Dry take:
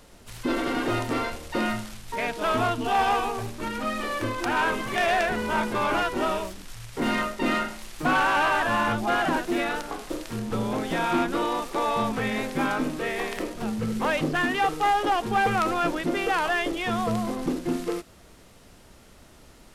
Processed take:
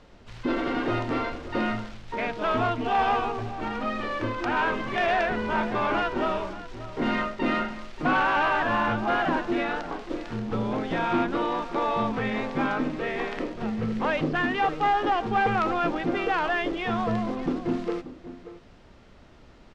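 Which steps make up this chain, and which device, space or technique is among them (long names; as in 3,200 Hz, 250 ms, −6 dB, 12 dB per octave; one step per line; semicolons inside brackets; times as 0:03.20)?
shout across a valley (high-frequency loss of the air 170 metres; slap from a distant wall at 100 metres, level −14 dB)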